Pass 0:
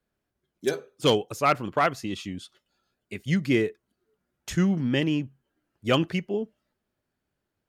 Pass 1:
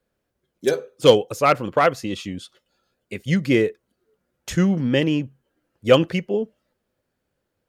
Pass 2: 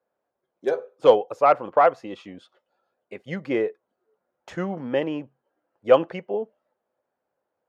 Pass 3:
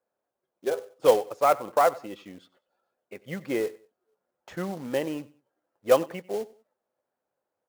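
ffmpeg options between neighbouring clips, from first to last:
ffmpeg -i in.wav -af "equalizer=frequency=510:width=5.8:gain=10,volume=4dB" out.wav
ffmpeg -i in.wav -af "bandpass=frequency=790:width_type=q:width=1.7:csg=0,volume=4dB" out.wav
ffmpeg -i in.wav -af "acrusher=bits=4:mode=log:mix=0:aa=0.000001,aecho=1:1:95|190:0.0891|0.0276,volume=-4dB" out.wav

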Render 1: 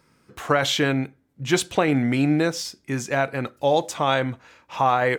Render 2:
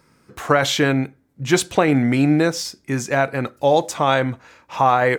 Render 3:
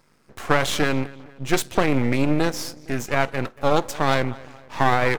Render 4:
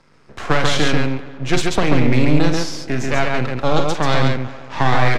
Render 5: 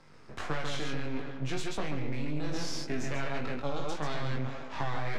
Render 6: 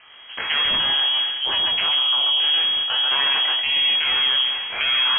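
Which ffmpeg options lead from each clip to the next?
ffmpeg -i in.wav -af "equalizer=frequency=3100:width_type=o:width=0.66:gain=-3.5,volume=4dB" out.wav
ffmpeg -i in.wav -filter_complex "[0:a]asplit=2[link_01][link_02];[link_02]adelay=230,lowpass=frequency=2900:poles=1,volume=-20dB,asplit=2[link_03][link_04];[link_04]adelay=230,lowpass=frequency=2900:poles=1,volume=0.49,asplit=2[link_05][link_06];[link_06]adelay=230,lowpass=frequency=2900:poles=1,volume=0.49,asplit=2[link_07][link_08];[link_08]adelay=230,lowpass=frequency=2900:poles=1,volume=0.49[link_09];[link_01][link_03][link_05][link_07][link_09]amix=inputs=5:normalize=0,aeval=exprs='max(val(0),0)':channel_layout=same" out.wav
ffmpeg -i in.wav -filter_complex "[0:a]lowpass=5500,acrossover=split=210|3000[link_01][link_02][link_03];[link_02]acompressor=threshold=-33dB:ratio=1.5[link_04];[link_01][link_04][link_03]amix=inputs=3:normalize=0,aecho=1:1:46.65|137:0.355|0.708,volume=6dB" out.wav
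ffmpeg -i in.wav -af "areverse,acompressor=threshold=-21dB:ratio=4,areverse,flanger=delay=19.5:depth=3.1:speed=1.7,alimiter=limit=-22dB:level=0:latency=1:release=447" out.wav
ffmpeg -i in.wav -af "highshelf=frequency=2000:gain=10.5,lowpass=frequency=2800:width_type=q:width=0.5098,lowpass=frequency=2800:width_type=q:width=0.6013,lowpass=frequency=2800:width_type=q:width=0.9,lowpass=frequency=2800:width_type=q:width=2.563,afreqshift=-3300,volume=8.5dB" out.wav

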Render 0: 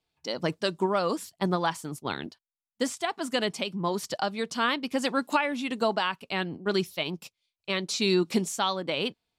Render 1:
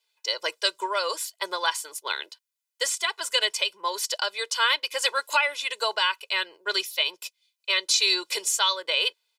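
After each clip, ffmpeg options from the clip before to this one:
ffmpeg -i in.wav -af "highpass=frequency=400:width=0.5412,highpass=frequency=400:width=1.3066,tiltshelf=frequency=920:gain=-9.5,aecho=1:1:2:0.9,volume=-2dB" out.wav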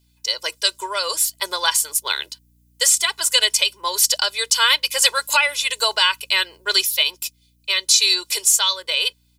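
ffmpeg -i in.wav -af "aeval=exprs='val(0)+0.00112*(sin(2*PI*60*n/s)+sin(2*PI*2*60*n/s)/2+sin(2*PI*3*60*n/s)/3+sin(2*PI*4*60*n/s)/4+sin(2*PI*5*60*n/s)/5)':channel_layout=same,crystalizer=i=3:c=0,dynaudnorm=framelen=110:gausssize=17:maxgain=11.5dB,volume=-1dB" out.wav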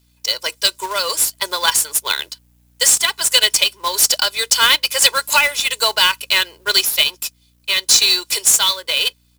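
ffmpeg -i in.wav -af "acrusher=bits=2:mode=log:mix=0:aa=0.000001,volume=2.5dB" out.wav

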